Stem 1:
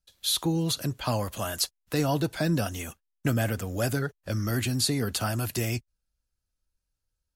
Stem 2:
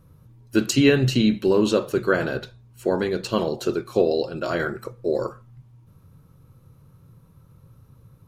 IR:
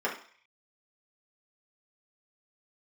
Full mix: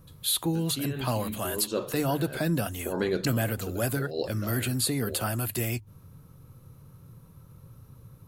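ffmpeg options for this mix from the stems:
-filter_complex "[0:a]equalizer=f=5800:w=2.4:g=-11.5,bandreject=f=50:t=h:w=6,bandreject=f=100:t=h:w=6,bandreject=f=150:t=h:w=6,volume=0.891,asplit=2[s0][s1];[1:a]acompressor=threshold=0.0562:ratio=2.5,volume=1.12[s2];[s1]apad=whole_len=365067[s3];[s2][s3]sidechaincompress=threshold=0.00631:ratio=6:attack=5.5:release=120[s4];[s0][s4]amix=inputs=2:normalize=0,highshelf=f=7400:g=7"

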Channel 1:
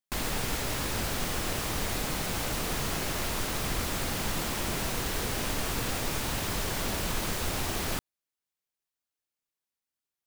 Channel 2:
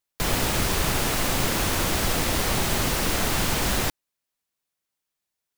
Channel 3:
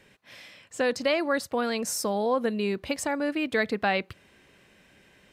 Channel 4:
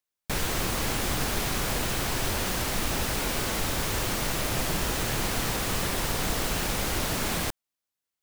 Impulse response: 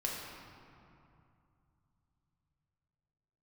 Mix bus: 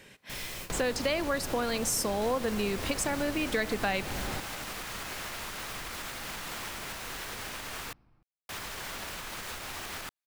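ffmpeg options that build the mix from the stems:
-filter_complex "[0:a]alimiter=level_in=1.19:limit=0.0631:level=0:latency=1:release=159,volume=0.841,equalizer=f=1600:w=0.41:g=11,adelay=2100,volume=0.299,asplit=3[s0][s1][s2];[s0]atrim=end=7.93,asetpts=PTS-STARTPTS,afade=t=out:st=7.926:d=0.004:c=hsin[s3];[s1]atrim=start=7.93:end=8.49,asetpts=PTS-STARTPTS,volume=0[s4];[s2]atrim=start=8.49,asetpts=PTS-STARTPTS,afade=t=in:d=0.004:c=hsin[s5];[s3][s4][s5]concat=n=3:v=0:a=1[s6];[1:a]lowpass=f=1800:p=1,alimiter=limit=0.0631:level=0:latency=1:release=171,adelay=500,volume=0.944[s7];[2:a]volume=1.33,asplit=3[s8][s9][s10];[s9]volume=0.119[s11];[3:a]volume=0.141,asplit=2[s12][s13];[s13]volume=0.224[s14];[s10]apad=whole_len=362880[s15];[s12][s15]sidechaingate=range=0.0224:threshold=0.00316:ratio=16:detection=peak[s16];[4:a]atrim=start_sample=2205[s17];[s11][s14]amix=inputs=2:normalize=0[s18];[s18][s17]afir=irnorm=-1:irlink=0[s19];[s6][s7][s8][s16][s19]amix=inputs=5:normalize=0,highshelf=f=4000:g=6.5,acompressor=threshold=0.0316:ratio=2.5"

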